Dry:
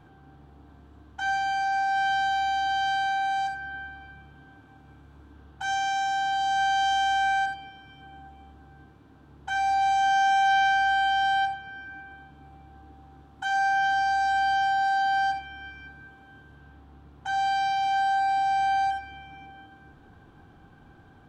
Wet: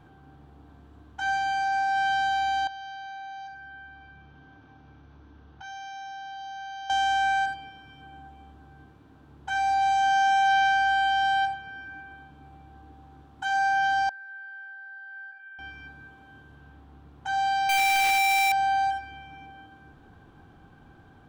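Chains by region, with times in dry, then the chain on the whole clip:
2.67–6.9 brick-wall FIR low-pass 6500 Hz + compressor 2:1, threshold -48 dBFS
14.09–15.59 compressor 10:1, threshold -31 dBFS + band-pass 1600 Hz, Q 9.7
17.69–18.52 infinite clipping + bell 2300 Hz +8.5 dB 1 oct
whole clip: dry

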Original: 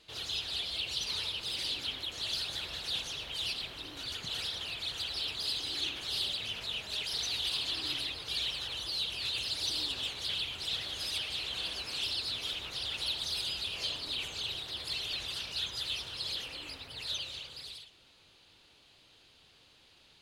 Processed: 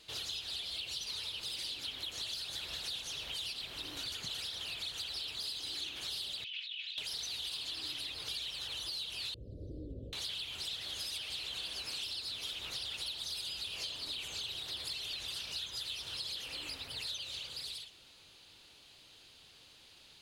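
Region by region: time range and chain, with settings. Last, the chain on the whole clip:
6.44–6.98 comb 2.7 ms, depth 32% + negative-ratio compressor -41 dBFS + Butterworth band-pass 2900 Hz, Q 1.9
9.34–10.13 elliptic low-pass 550 Hz + tilt -2.5 dB/oct
whole clip: high shelf 4400 Hz +8 dB; compressor, threshold -38 dBFS

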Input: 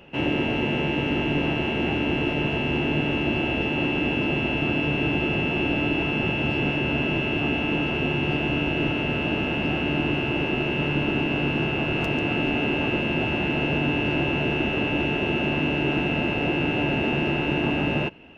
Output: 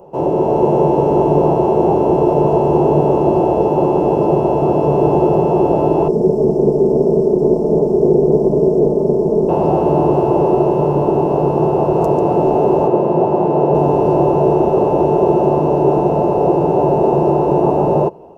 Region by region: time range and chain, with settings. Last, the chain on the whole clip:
6.08–9.49 minimum comb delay 4.7 ms + EQ curve 140 Hz 0 dB, 330 Hz +7 dB, 520 Hz -2 dB, 810 Hz -12 dB, 2100 Hz -28 dB, 3400 Hz -24 dB, 5900 Hz -17 dB, 8500 Hz -21 dB
12.87–13.75 HPF 120 Hz + high shelf 5000 Hz -11.5 dB
whole clip: EQ curve 110 Hz 0 dB, 160 Hz +9 dB, 270 Hz -3 dB, 380 Hz +15 dB, 1000 Hz +13 dB, 1700 Hz -18 dB, 2900 Hz -21 dB, 4200 Hz -6 dB, 7400 Hz +7 dB; AGC; gain -1 dB

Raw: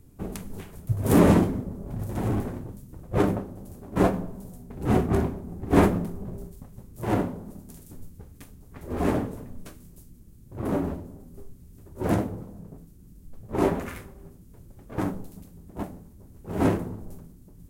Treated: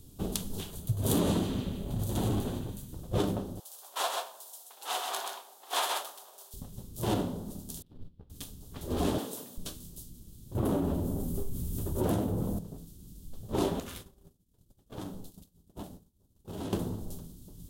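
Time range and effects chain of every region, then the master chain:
0.7–2.93 notch 5300 Hz, Q 10 + narrowing echo 0.151 s, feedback 45%, band-pass 2600 Hz, level -9 dB
3.6–6.54 HPF 790 Hz 24 dB/oct + echo 0.129 s -4.5 dB
7.82–8.3 G.711 law mismatch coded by A + air absorption 400 m + upward expander, over -52 dBFS
9.18–9.58 HPF 230 Hz + tilt +2 dB/oct
10.55–12.59 bell 4500 Hz -8 dB 1.7 oct + fast leveller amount 50%
13.8–16.73 expander -36 dBFS + compressor 3:1, threshold -40 dBFS
whole clip: resonant high shelf 2700 Hz +7.5 dB, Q 3; compressor 4:1, threshold -26 dBFS

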